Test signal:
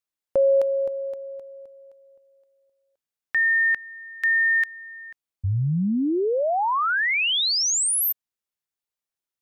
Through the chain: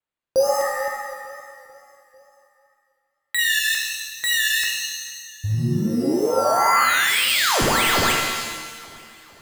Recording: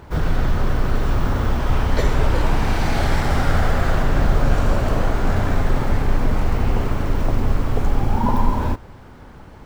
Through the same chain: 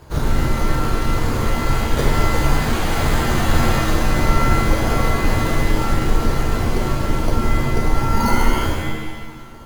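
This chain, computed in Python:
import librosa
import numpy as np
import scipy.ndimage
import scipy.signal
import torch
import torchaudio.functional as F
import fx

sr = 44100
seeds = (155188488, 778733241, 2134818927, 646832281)

p1 = fx.dereverb_blind(x, sr, rt60_s=0.89)
p2 = np.sign(p1) * np.maximum(np.abs(p1) - 10.0 ** (-35.5 / 20.0), 0.0)
p3 = p1 + (p2 * librosa.db_to_amplitude(-7.0))
p4 = np.repeat(p3[::8], 8)[:len(p3)]
p5 = fx.wow_flutter(p4, sr, seeds[0], rate_hz=2.1, depth_cents=96.0)
p6 = fx.echo_feedback(p5, sr, ms=446, feedback_pct=55, wet_db=-21.0)
p7 = fx.rev_shimmer(p6, sr, seeds[1], rt60_s=1.0, semitones=7, shimmer_db=-2, drr_db=1.0)
y = p7 * librosa.db_to_amplitude(-3.5)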